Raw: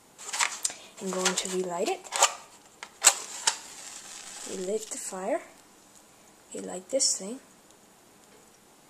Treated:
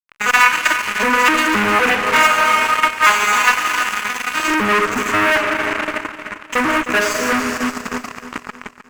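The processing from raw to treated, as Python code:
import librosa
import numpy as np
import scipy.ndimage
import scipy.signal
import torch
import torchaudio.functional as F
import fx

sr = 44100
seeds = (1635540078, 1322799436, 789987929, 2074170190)

p1 = fx.vocoder_arp(x, sr, chord='minor triad', root=56, every_ms=255)
p2 = scipy.signal.sosfilt(scipy.signal.butter(16, 170.0, 'highpass', fs=sr, output='sos'), p1)
p3 = fx.rev_schroeder(p2, sr, rt60_s=2.6, comb_ms=28, drr_db=6.0)
p4 = fx.transient(p3, sr, attack_db=8, sustain_db=-8)
p5 = fx.fuzz(p4, sr, gain_db=47.0, gate_db=-46.0)
p6 = fx.band_shelf(p5, sr, hz=1700.0, db=13.5, octaves=1.7)
p7 = p6 + fx.echo_feedback(p6, sr, ms=309, feedback_pct=44, wet_db=-12, dry=0)
y = F.gain(torch.from_numpy(p7), -5.5).numpy()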